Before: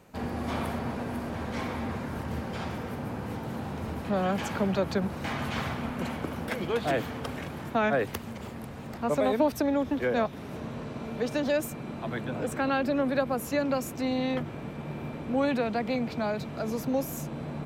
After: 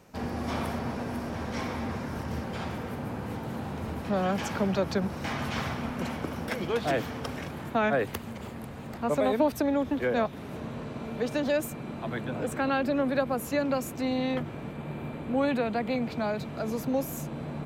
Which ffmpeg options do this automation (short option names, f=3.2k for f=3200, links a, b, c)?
-af "asetnsamples=n=441:p=0,asendcmd='2.44 equalizer g -0.5;4.04 equalizer g 5.5;7.51 equalizer g -3;14.72 equalizer g -10;16.02 equalizer g -3',equalizer=f=5.5k:t=o:w=0.3:g=7"